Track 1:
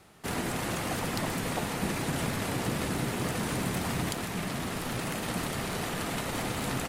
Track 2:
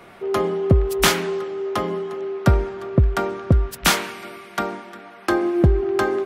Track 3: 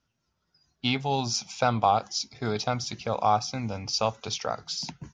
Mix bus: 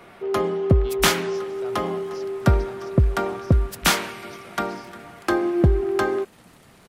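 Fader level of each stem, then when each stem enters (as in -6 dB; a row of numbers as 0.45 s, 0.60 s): -18.5 dB, -1.5 dB, -18.5 dB; 1.10 s, 0.00 s, 0.00 s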